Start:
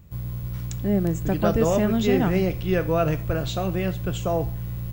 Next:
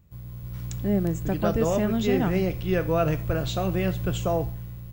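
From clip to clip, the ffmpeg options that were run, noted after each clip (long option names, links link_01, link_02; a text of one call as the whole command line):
ffmpeg -i in.wav -af "dynaudnorm=framelen=130:gausssize=9:maxgain=11.5dB,volume=-9dB" out.wav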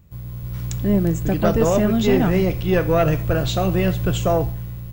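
ffmpeg -i in.wav -af "acontrast=74,aeval=exprs='0.562*(cos(1*acos(clip(val(0)/0.562,-1,1)))-cos(1*PI/2))+0.126*(cos(2*acos(clip(val(0)/0.562,-1,1)))-cos(2*PI/2))':channel_layout=same" out.wav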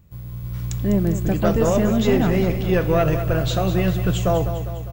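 ffmpeg -i in.wav -af "aecho=1:1:201|402|603|804|1005|1206:0.299|0.158|0.0839|0.0444|0.0236|0.0125,volume=-1.5dB" out.wav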